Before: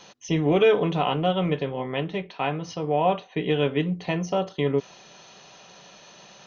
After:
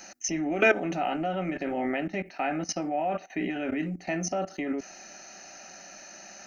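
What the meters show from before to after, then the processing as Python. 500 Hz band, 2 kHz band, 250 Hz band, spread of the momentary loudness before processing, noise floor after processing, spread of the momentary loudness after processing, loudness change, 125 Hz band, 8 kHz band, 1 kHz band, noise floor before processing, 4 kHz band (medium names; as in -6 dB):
-7.0 dB, +2.5 dB, -3.0 dB, 9 LU, -49 dBFS, 21 LU, -4.5 dB, -11.5 dB, no reading, -4.0 dB, -50 dBFS, -8.5 dB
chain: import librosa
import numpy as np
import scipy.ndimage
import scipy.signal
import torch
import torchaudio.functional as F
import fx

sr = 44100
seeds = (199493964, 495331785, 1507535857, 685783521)

y = fx.high_shelf(x, sr, hz=3900.0, db=11.0)
y = fx.level_steps(y, sr, step_db=17)
y = fx.fixed_phaser(y, sr, hz=690.0, stages=8)
y = y * 10.0 ** (9.0 / 20.0)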